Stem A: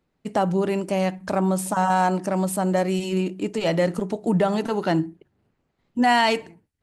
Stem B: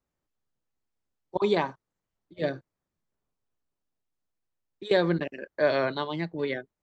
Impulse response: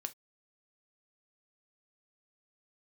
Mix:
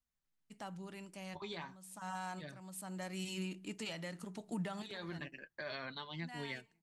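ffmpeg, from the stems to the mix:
-filter_complex "[0:a]highpass=150,adelay=250,volume=-6.5dB,afade=type=in:start_time=1.74:duration=0.41:silence=0.354813[link_01];[1:a]alimiter=limit=-20.5dB:level=0:latency=1:release=166,flanger=delay=3.8:depth=9:regen=45:speed=0.34:shape=triangular,volume=0dB,asplit=2[link_02][link_03];[link_03]apad=whole_len=312174[link_04];[link_01][link_04]sidechaincompress=threshold=-53dB:ratio=3:attack=49:release=562[link_05];[link_05][link_02]amix=inputs=2:normalize=0,equalizer=frequency=450:width_type=o:width=2.3:gain=-15,alimiter=level_in=7.5dB:limit=-24dB:level=0:latency=1:release=470,volume=-7.5dB"

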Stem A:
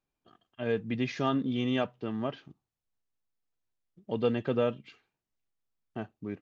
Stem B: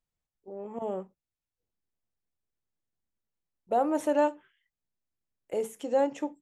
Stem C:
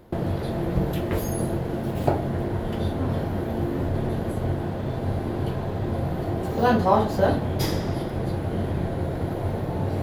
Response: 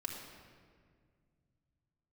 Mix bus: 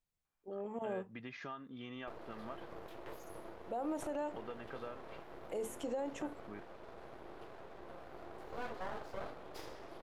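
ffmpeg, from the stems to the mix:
-filter_complex "[0:a]equalizer=frequency=1300:width=0.64:gain=14.5,acompressor=threshold=-32dB:ratio=5,adelay=250,volume=-12.5dB[link_01];[1:a]acompressor=threshold=-30dB:ratio=2,volume=-2.5dB[link_02];[2:a]highpass=frequency=370:width=0.5412,highpass=frequency=370:width=1.3066,aemphasis=mode=reproduction:type=cd,aeval=exprs='max(val(0),0)':channel_layout=same,adelay=1950,volume=-14.5dB[link_03];[link_01][link_02][link_03]amix=inputs=3:normalize=0,alimiter=level_in=6.5dB:limit=-24dB:level=0:latency=1:release=53,volume=-6.5dB"

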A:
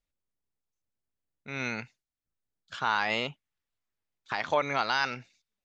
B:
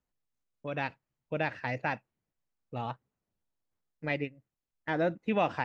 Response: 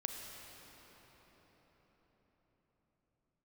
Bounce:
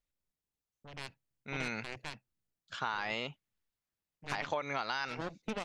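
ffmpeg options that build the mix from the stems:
-filter_complex "[0:a]volume=-2.5dB[link_01];[1:a]equalizer=frequency=910:width_type=o:width=2.7:gain=-10.5,aeval=exprs='0.0794*(cos(1*acos(clip(val(0)/0.0794,-1,1)))-cos(1*PI/2))+0.00794*(cos(3*acos(clip(val(0)/0.0794,-1,1)))-cos(3*PI/2))+0.0158*(cos(7*acos(clip(val(0)/0.0794,-1,1)))-cos(7*PI/2))':channel_layout=same,adelay=200,volume=-2dB[link_02];[link_01][link_02]amix=inputs=2:normalize=0,acompressor=threshold=-31dB:ratio=6"

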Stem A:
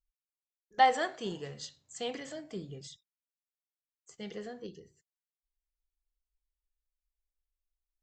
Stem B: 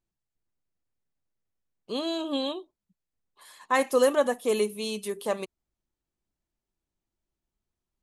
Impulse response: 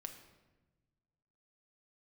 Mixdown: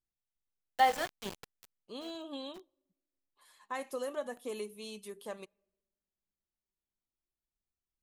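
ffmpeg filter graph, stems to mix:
-filter_complex "[0:a]aeval=exprs='val(0)*gte(abs(val(0)),0.0251)':channel_layout=same,volume=-2.5dB[link_01];[1:a]acompressor=threshold=-22dB:ratio=3,flanger=delay=0.6:depth=4.8:regen=76:speed=0.38:shape=sinusoidal,volume=-8dB,asplit=3[link_02][link_03][link_04];[link_03]volume=-22.5dB[link_05];[link_04]apad=whole_len=354074[link_06];[link_01][link_06]sidechaincompress=threshold=-59dB:ratio=6:attack=16:release=105[link_07];[2:a]atrim=start_sample=2205[link_08];[link_05][link_08]afir=irnorm=-1:irlink=0[link_09];[link_07][link_02][link_09]amix=inputs=3:normalize=0"

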